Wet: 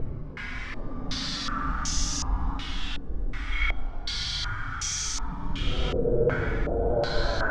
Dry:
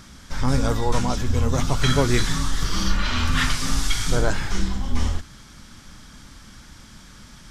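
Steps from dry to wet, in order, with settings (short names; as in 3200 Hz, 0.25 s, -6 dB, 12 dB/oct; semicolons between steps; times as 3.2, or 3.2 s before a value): Paulstretch 9.9×, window 0.05 s, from 3.54; de-hum 79.88 Hz, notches 35; stepped low-pass 2.7 Hz 460–6200 Hz; gain -8 dB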